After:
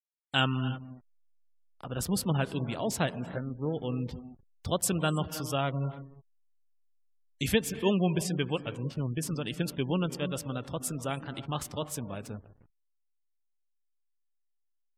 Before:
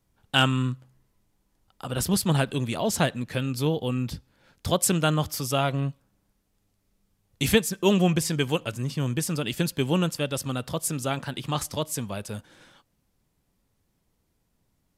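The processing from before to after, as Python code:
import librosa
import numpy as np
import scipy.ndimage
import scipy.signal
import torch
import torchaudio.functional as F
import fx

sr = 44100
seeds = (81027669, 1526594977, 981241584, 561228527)

y = fx.cheby_ripple(x, sr, hz=2200.0, ripple_db=3, at=(3.26, 3.72), fade=0.02)
y = fx.rev_gated(y, sr, seeds[0], gate_ms=350, shape='rising', drr_db=11.0)
y = fx.backlash(y, sr, play_db=-34.5)
y = fx.spec_gate(y, sr, threshold_db=-30, keep='strong')
y = y * librosa.db_to_amplitude(-5.5)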